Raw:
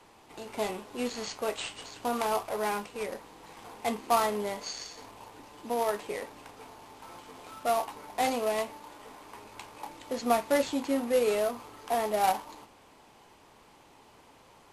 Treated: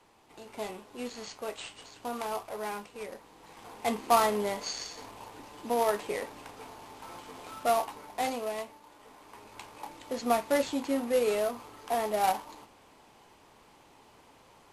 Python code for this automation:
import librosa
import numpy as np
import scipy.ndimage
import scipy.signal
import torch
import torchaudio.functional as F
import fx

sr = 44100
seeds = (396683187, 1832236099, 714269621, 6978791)

y = fx.gain(x, sr, db=fx.line((3.2, -5.5), (4.01, 2.0), (7.63, 2.0), (8.81, -8.0), (9.61, -1.0)))